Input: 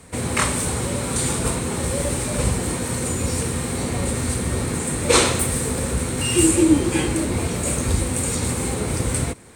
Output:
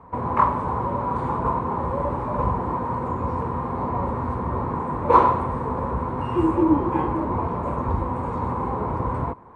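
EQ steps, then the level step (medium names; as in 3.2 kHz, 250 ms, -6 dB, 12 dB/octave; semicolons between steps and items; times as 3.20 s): resonant low-pass 1 kHz, resonance Q 8.7; -4.0 dB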